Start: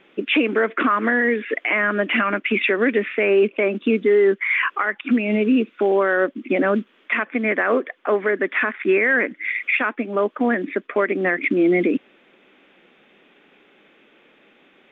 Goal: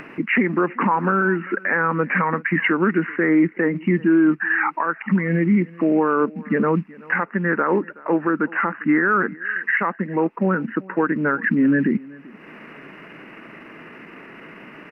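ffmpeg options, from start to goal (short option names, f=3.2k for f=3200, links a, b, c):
-af "acompressor=mode=upward:threshold=-27dB:ratio=2.5,aecho=1:1:383:0.075,asetrate=35002,aresample=44100,atempo=1.25992"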